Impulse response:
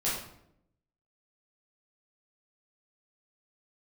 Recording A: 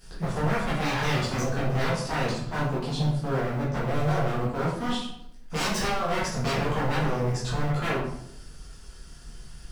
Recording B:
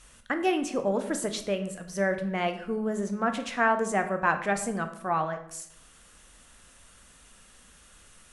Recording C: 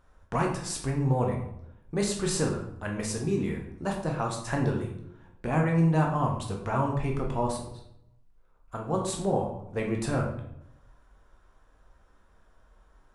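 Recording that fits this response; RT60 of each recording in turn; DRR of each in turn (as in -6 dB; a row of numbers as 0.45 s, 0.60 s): A; 0.75 s, 0.75 s, 0.75 s; -8.5 dB, 7.0 dB, 0.0 dB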